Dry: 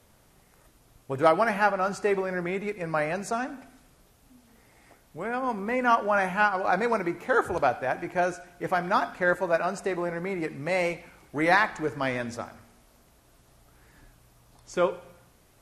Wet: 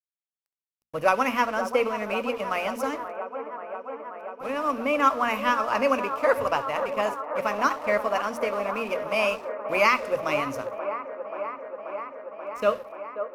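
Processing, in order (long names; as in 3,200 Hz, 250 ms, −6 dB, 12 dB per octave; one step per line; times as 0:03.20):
EQ curve with evenly spaced ripples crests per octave 0.9, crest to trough 11 dB
dead-zone distortion −45 dBFS
mains-hum notches 50/100/150/200 Hz
delay with a band-pass on its return 624 ms, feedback 81%, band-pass 590 Hz, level −8.5 dB
speed change +17%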